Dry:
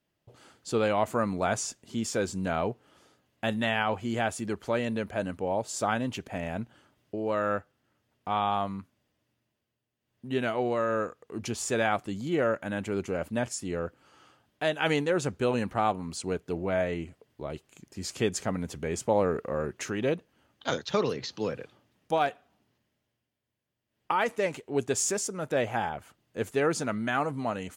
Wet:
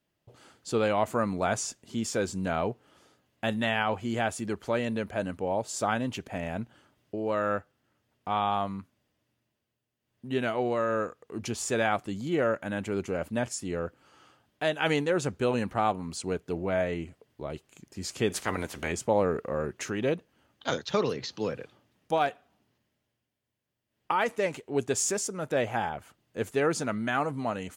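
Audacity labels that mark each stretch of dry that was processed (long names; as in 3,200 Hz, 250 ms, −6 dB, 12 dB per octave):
18.290000	18.910000	ceiling on every frequency bin ceiling under each frame's peak by 19 dB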